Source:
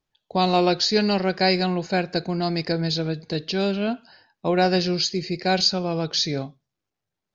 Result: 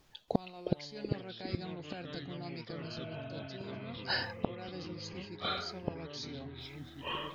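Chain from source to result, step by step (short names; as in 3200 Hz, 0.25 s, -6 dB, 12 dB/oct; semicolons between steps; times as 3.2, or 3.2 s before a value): spectral repair 2.85–3.81, 590–3900 Hz after; reverse; compressor 6:1, threshold -28 dBFS, peak gain reduction 13.5 dB; reverse; flipped gate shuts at -32 dBFS, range -35 dB; vocal rider within 4 dB 2 s; echoes that change speed 0.279 s, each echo -4 st, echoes 3; gain +17.5 dB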